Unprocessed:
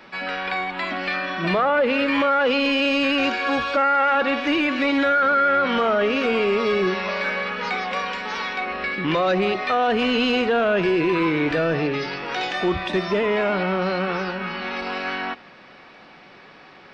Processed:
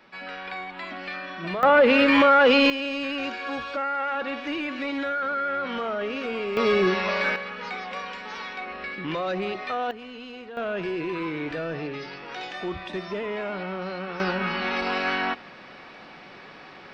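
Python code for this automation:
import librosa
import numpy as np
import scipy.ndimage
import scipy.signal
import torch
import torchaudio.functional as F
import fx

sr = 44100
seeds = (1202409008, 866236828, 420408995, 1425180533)

y = fx.gain(x, sr, db=fx.steps((0.0, -9.0), (1.63, 3.0), (2.7, -9.0), (6.57, 0.0), (7.36, -8.0), (9.91, -20.0), (10.57, -9.5), (14.2, 1.5)))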